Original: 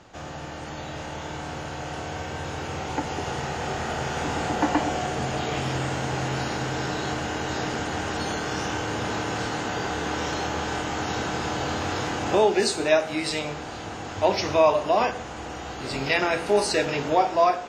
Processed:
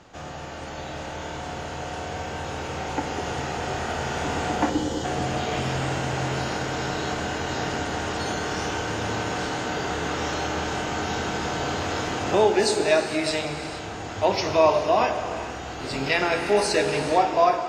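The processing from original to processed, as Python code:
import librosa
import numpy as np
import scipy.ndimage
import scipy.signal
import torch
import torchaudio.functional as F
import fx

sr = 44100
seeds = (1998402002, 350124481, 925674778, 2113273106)

y = fx.spec_erase(x, sr, start_s=4.7, length_s=0.34, low_hz=570.0, high_hz=2900.0)
y = fx.rev_gated(y, sr, seeds[0], gate_ms=500, shape='flat', drr_db=6.5)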